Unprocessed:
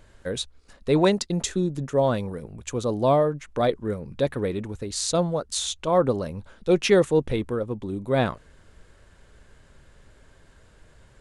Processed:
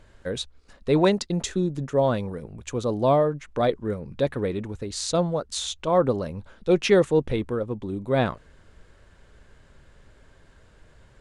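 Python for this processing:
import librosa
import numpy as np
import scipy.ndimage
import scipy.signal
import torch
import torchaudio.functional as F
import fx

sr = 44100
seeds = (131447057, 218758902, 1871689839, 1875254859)

y = fx.high_shelf(x, sr, hz=10000.0, db=-11.5)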